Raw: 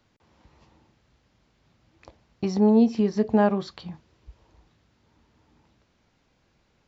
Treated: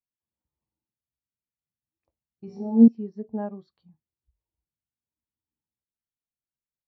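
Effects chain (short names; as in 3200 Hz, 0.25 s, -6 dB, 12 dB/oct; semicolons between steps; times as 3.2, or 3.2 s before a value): notches 50/100 Hz; 2.46–2.88 flutter echo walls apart 3 m, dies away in 0.68 s; spectral expander 1.5:1; gain -4 dB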